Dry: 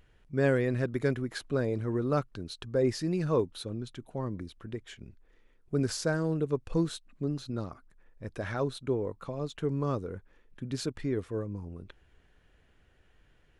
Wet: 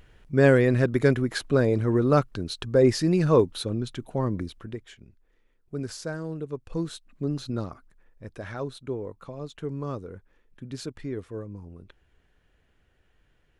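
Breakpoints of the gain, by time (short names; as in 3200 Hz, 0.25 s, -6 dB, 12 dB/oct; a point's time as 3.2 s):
4.45 s +8 dB
5.05 s -4 dB
6.58 s -4 dB
7.46 s +5.5 dB
8.39 s -2 dB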